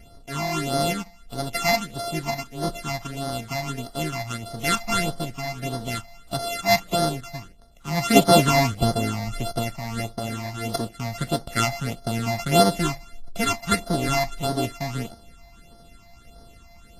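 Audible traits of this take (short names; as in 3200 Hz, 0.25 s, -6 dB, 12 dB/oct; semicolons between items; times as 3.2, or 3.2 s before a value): a buzz of ramps at a fixed pitch in blocks of 64 samples; phasing stages 8, 1.6 Hz, lowest notch 400–2500 Hz; Vorbis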